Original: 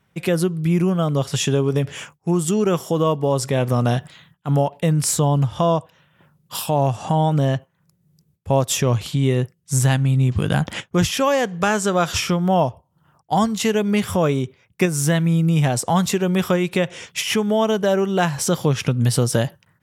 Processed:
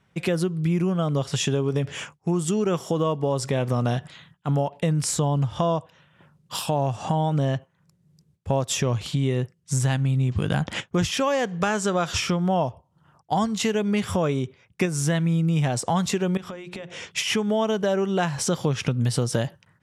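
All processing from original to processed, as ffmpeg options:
-filter_complex "[0:a]asettb=1/sr,asplit=3[s0][s1][s2];[s0]atrim=end=16.374[s3];[s1]atrim=start=16.37:end=17.11,asetpts=PTS-STARTPTS,afade=t=in:d=0.004:c=qsin,afade=t=out:st=0.736:d=0.004:c=qsin,highshelf=f=11000:g=-11.5,acompressor=threshold=0.0282:ratio=12:attack=3.2:release=140:knee=1:detection=peak,bandreject=f=60:t=h:w=6,bandreject=f=120:t=h:w=6,bandreject=f=180:t=h:w=6,bandreject=f=240:t=h:w=6,bandreject=f=300:t=h:w=6,bandreject=f=360:t=h:w=6,bandreject=f=420:t=h:w=6[s4];[s2]atrim=start=17.106[s5];[s3][s4]acrossfade=d=0.004:c1=hsin:c2=qsin[s6];[s6][s5]acrossfade=d=0.004:c1=qsin:c2=hsin,acompressor=threshold=0.0708:ratio=2,lowpass=8700"

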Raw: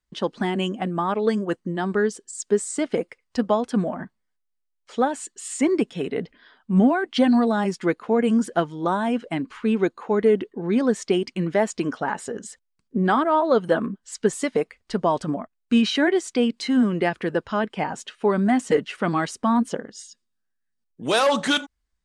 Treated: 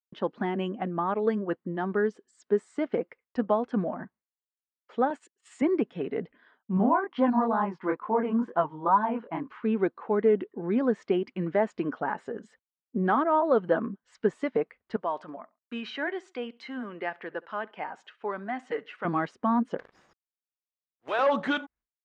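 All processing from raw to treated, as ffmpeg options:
-filter_complex "[0:a]asettb=1/sr,asplit=3[s0][s1][s2];[s0]atrim=end=5.104[s3];[s1]atrim=start=5.1:end=5.62,asetpts=PTS-STARTPTS,afade=t=in:d=0.004:c=qsin,afade=t=out:st=0.516:d=0.004:c=qsin,agate=range=0.0631:threshold=0.0158:ratio=16:release=100:detection=peak,highpass=150,highshelf=f=6100:g=10[s4];[s2]atrim=start=5.616[s5];[s3][s4]acrossfade=d=0.004:c1=hsin:c2=qsin[s6];[s6][s5]acrossfade=d=0.004:c1=qsin:c2=hsin,asettb=1/sr,asplit=3[s7][s8][s9];[s7]atrim=end=6.774[s10];[s8]atrim=start=6.77:end=9.48,asetpts=PTS-STARTPTS,afade=t=in:d=0.004:c=qsin,afade=t=out:st=2.706:d=0.004:c=qsin,equalizer=f=1000:t=o:w=0.5:g=13.5,flanger=delay=19:depth=7.9:speed=2.2,lowpass=f=3400:p=1[s11];[s9]atrim=start=9.476[s12];[s10][s11]acrossfade=d=0.004:c1=hsin:c2=qsin[s13];[s13][s12]acrossfade=d=0.004:c1=qsin:c2=hsin,asettb=1/sr,asplit=3[s14][s15][s16];[s14]atrim=end=14.964[s17];[s15]atrim=start=14.96:end=19.05,asetpts=PTS-STARTPTS,afade=t=in:d=0.004:c=qsin,afade=t=out:st=4.086:d=0.004:c=qsin,highpass=f=1100:p=1,aecho=1:1:68|136:0.0631|0.0215,atrim=end_sample=180369[s18];[s16]atrim=start=19.046[s19];[s17][s18]acrossfade=d=0.004:c1=hsin:c2=qsin[s20];[s20][s19]acrossfade=d=0.004:c1=qsin:c2=hsin,asettb=1/sr,asplit=3[s21][s22][s23];[s21]atrim=end=19.784[s24];[s22]atrim=start=19.78:end=21.19,asetpts=PTS-STARTPTS,afade=t=in:d=0.004:c=qsin,afade=t=out:st=1.406:d=0.004:c=qsin,highpass=650,acrossover=split=3500[s25][s26];[s26]acompressor=threshold=0.0126:ratio=4:attack=1:release=60[s27];[s25][s27]amix=inputs=2:normalize=0,acrusher=bits=6:dc=4:mix=0:aa=0.000001[s28];[s23]atrim=start=21.186[s29];[s24][s28]acrossfade=d=0.004:c1=hsin:c2=qsin[s30];[s30][s29]acrossfade=d=0.004:c1=qsin:c2=hsin,highpass=f=170:p=1,agate=range=0.0224:threshold=0.00355:ratio=3:detection=peak,lowpass=1900,volume=0.668"

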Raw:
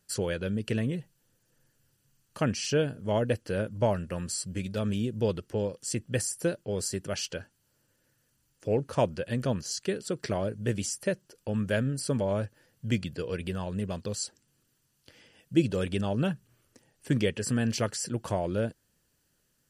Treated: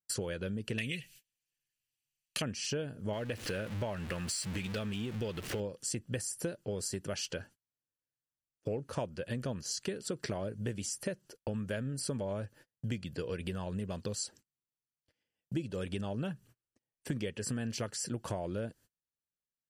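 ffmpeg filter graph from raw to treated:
-filter_complex "[0:a]asettb=1/sr,asplit=3[s0][s1][s2];[s0]atrim=end=0.784[s3];[s1]atrim=start=0.78:end=2.42,asetpts=PTS-STARTPTS,afade=t=in:d=0.004:c=qsin,afade=t=out:st=1.636:d=0.004:c=qsin,highshelf=f=1600:t=q:w=3:g=14,asoftclip=type=hard:threshold=0.224[s4];[s2]atrim=start=2.416[s5];[s3][s4]acrossfade=d=0.004:c1=hsin:c2=qsin[s6];[s6][s5]acrossfade=d=0.004:c1=qsin:c2=hsin,asettb=1/sr,asplit=3[s7][s8][s9];[s7]atrim=end=3.134[s10];[s8]atrim=start=3.13:end=5.6,asetpts=PTS-STARTPTS,afade=t=in:d=0.004:c=qsin,afade=t=out:st=2.466:d=0.004:c=qsin,aeval=exprs='val(0)+0.5*0.0112*sgn(val(0))':c=same,equalizer=f=2500:t=o:w=2:g=8.5,acompressor=threshold=0.0178:ratio=1.5:attack=3.2:release=140:knee=1:detection=peak[s11];[s9]atrim=start=5.596[s12];[s10][s11]acrossfade=d=0.004:c1=hsin:c2=qsin[s13];[s13][s12]acrossfade=d=0.004:c1=qsin:c2=hsin,agate=range=0.0224:threshold=0.00251:ratio=16:detection=peak,acompressor=threshold=0.0158:ratio=6,volume=1.33"

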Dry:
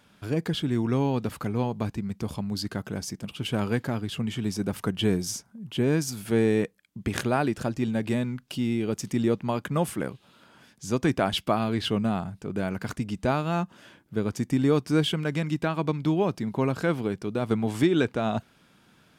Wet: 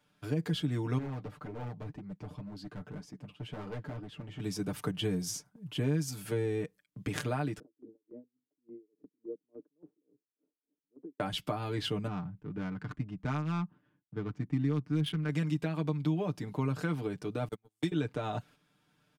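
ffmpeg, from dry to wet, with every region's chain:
-filter_complex "[0:a]asettb=1/sr,asplit=3[s0][s1][s2];[s0]atrim=end=0.984[s3];[s1]atrim=start=0.98:end=4.4,asetpts=PTS-STARTPTS,afade=t=in:d=0.004:c=qsin,afade=t=out:st=3.416:d=0.004:c=qsin,lowpass=f=1400:p=1,flanger=delay=2.1:depth=9.7:regen=41:speed=1.9:shape=triangular,volume=37.6,asoftclip=hard,volume=0.0266[s4];[s2]atrim=start=4.396[s5];[s3][s4]acrossfade=d=0.004:c1=hsin:c2=qsin[s6];[s6][s5]acrossfade=d=0.004:c1=qsin:c2=hsin,asettb=1/sr,asplit=3[s7][s8][s9];[s7]atrim=end=7.594[s10];[s8]atrim=start=7.59:end=11.2,asetpts=PTS-STARTPTS,afade=t=in:d=0.004:c=qsin,afade=t=out:st=3.606:d=0.004:c=qsin,acompressor=threshold=0.0501:ratio=3:attack=3.2:release=140:knee=1:detection=peak,asuperpass=centerf=350:order=4:qfactor=1.9,aeval=exprs='val(0)*pow(10,-35*(0.5-0.5*cos(2*PI*3.5*n/s))/20)':c=same[s11];[s9]atrim=start=11.196[s12];[s10][s11]acrossfade=d=0.004:c1=hsin:c2=qsin[s13];[s13][s12]acrossfade=d=0.004:c1=qsin:c2=hsin,asettb=1/sr,asplit=3[s14][s15][s16];[s14]atrim=end=12.074[s17];[s15]atrim=start=12.07:end=15.29,asetpts=PTS-STARTPTS,afade=t=in:d=0.004:c=qsin,afade=t=out:st=3.216:d=0.004:c=qsin,agate=range=0.0224:threshold=0.00251:ratio=3:release=100:detection=peak,equalizer=f=590:t=o:w=1.2:g=-11.5,adynamicsmooth=sensitivity=3:basefreq=960[s18];[s16]atrim=start=15.286[s19];[s17][s18]acrossfade=d=0.004:c1=hsin:c2=qsin[s20];[s20][s19]acrossfade=d=0.004:c1=qsin:c2=hsin,asettb=1/sr,asplit=3[s21][s22][s23];[s21]atrim=end=17.484[s24];[s22]atrim=start=17.48:end=17.92,asetpts=PTS-STARTPTS,afade=t=in:d=0.004:c=qsin,afade=t=out:st=0.436:d=0.004:c=qsin,agate=range=0.00562:threshold=0.0891:ratio=16:release=100:detection=peak,aemphasis=mode=production:type=75fm[s25];[s23]atrim=start=17.916[s26];[s24][s25]acrossfade=d=0.004:c1=hsin:c2=qsin[s27];[s27][s26]acrossfade=d=0.004:c1=qsin:c2=hsin,agate=range=0.398:threshold=0.00447:ratio=16:detection=peak,aecho=1:1:6.7:0.77,acrossover=split=190[s28][s29];[s29]acompressor=threshold=0.0562:ratio=6[s30];[s28][s30]amix=inputs=2:normalize=0,volume=0.473"

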